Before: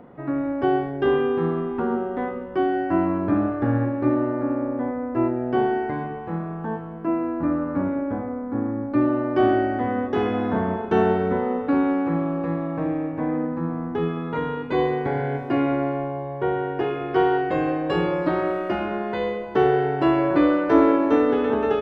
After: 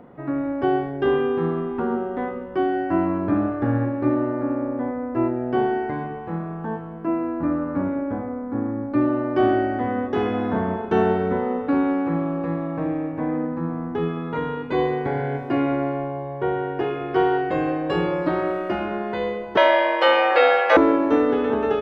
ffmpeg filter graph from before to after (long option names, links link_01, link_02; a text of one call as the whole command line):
ffmpeg -i in.wav -filter_complex "[0:a]asettb=1/sr,asplit=3[link_01][link_02][link_03];[link_01]atrim=end=19.574[link_04];[link_02]atrim=start=19.57:end=20.77,asetpts=PTS-STARTPTS,afade=type=in:duration=0.004:curve=qsin,afade=type=out:start_time=1.196:duration=0.004:curve=qsin,equalizer=frequency=2900:width=0.48:gain=12.5,afreqshift=200[link_05];[link_03]atrim=start=20.766[link_06];[link_04][link_05]acrossfade=duration=0.004:curve1=hsin:curve2=qsin[link_07];[link_07][link_06]acrossfade=duration=0.004:curve1=qsin:curve2=hsin" out.wav